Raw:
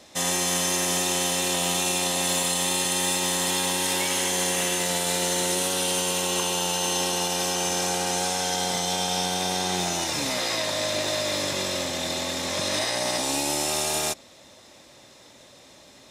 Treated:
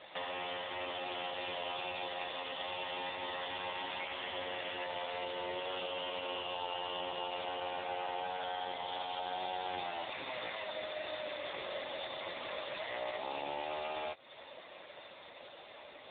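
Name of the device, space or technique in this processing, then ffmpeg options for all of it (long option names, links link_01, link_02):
voicemail: -filter_complex "[0:a]bass=frequency=250:gain=-11,treble=frequency=4000:gain=11,asettb=1/sr,asplit=3[link_01][link_02][link_03];[link_01]atrim=end=11.694[link_04];[link_02]atrim=start=11.69:end=12.33,asetpts=PTS-STARTPTS,afade=type=in:duration=0.004:curve=qsin,afade=type=out:start_time=0.636:duration=0.004:curve=qsin,bandreject=frequency=2500:width=21[link_05];[link_03]atrim=start=12.326[link_06];[link_04][link_05]acrossfade=duration=0.004:curve1=hsin:curve2=qsin[link_07];[link_07][link_06]acrossfade=duration=0.004:curve1=qsin:curve2=hsin,highpass=390,lowpass=2900,acompressor=threshold=-39dB:ratio=12,volume=7dB" -ar 8000 -c:a libopencore_amrnb -b:a 5900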